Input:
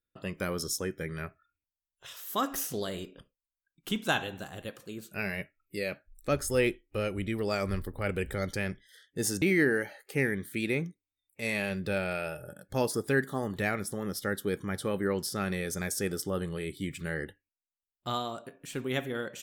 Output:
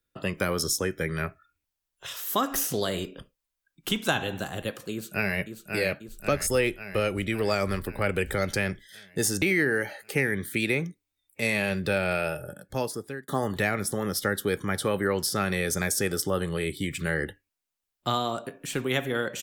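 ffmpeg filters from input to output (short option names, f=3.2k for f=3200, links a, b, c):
-filter_complex "[0:a]asplit=2[a][b];[b]afade=t=in:st=4.92:d=0.01,afade=t=out:st=5.38:d=0.01,aecho=0:1:540|1080|1620|2160|2700|3240|3780|4320|4860:0.446684|0.290344|0.188724|0.12267|0.0797358|0.0518283|0.0336884|0.0218974|0.0142333[c];[a][c]amix=inputs=2:normalize=0,asplit=2[d][e];[d]atrim=end=13.28,asetpts=PTS-STARTPTS,afade=t=out:st=12.14:d=1.14[f];[e]atrim=start=13.28,asetpts=PTS-STARTPTS,afade=t=in:d=0.004:c=hsin[g];[f][g]concat=n=2:v=0:a=1,acrossover=split=110|470[h][i][j];[h]acompressor=threshold=-46dB:ratio=4[k];[i]acompressor=threshold=-39dB:ratio=4[l];[j]acompressor=threshold=-32dB:ratio=4[m];[k][l][m]amix=inputs=3:normalize=0,volume=8.5dB"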